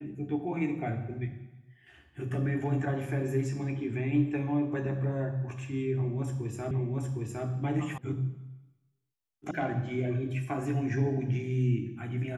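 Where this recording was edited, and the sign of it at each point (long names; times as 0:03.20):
0:06.71: the same again, the last 0.76 s
0:07.98: cut off before it has died away
0:09.51: cut off before it has died away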